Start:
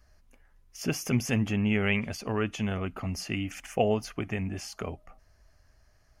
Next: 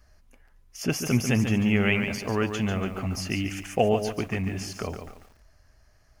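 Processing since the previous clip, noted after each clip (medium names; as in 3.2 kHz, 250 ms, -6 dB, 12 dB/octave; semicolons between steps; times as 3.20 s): bit-crushed delay 143 ms, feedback 35%, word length 9-bit, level -7.5 dB; trim +3 dB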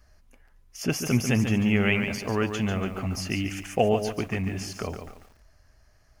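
no audible change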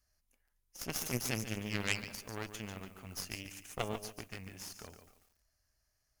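pre-emphasis filter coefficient 0.8; Chebyshev shaper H 3 -10 dB, 4 -17 dB, 5 -27 dB, 7 -42 dB, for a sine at -19 dBFS; trim +5.5 dB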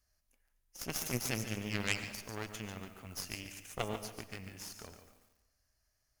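algorithmic reverb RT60 0.97 s, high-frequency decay 0.85×, pre-delay 60 ms, DRR 12 dB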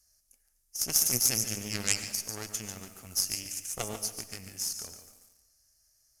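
high-order bell 8 kHz +15.5 dB; band-stop 1 kHz, Q 16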